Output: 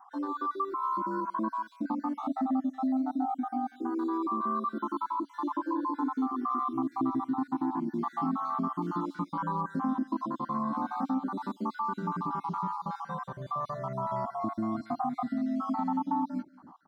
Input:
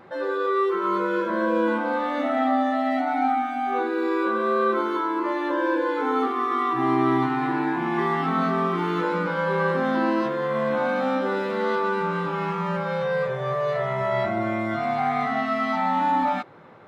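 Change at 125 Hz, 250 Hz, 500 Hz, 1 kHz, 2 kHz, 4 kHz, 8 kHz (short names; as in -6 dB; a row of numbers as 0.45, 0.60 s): -9.0 dB, -5.0 dB, -17.0 dB, -7.5 dB, -21.0 dB, under -15 dB, n/a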